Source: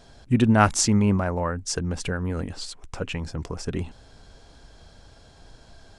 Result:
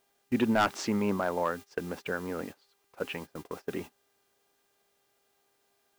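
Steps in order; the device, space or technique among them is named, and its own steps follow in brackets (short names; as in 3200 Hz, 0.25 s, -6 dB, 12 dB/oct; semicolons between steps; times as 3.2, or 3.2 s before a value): aircraft radio (BPF 300–2700 Hz; hard clip -16.5 dBFS, distortion -8 dB; buzz 400 Hz, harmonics 19, -55 dBFS -4 dB/oct; white noise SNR 21 dB; gate -38 dBFS, range -21 dB); gain -1.5 dB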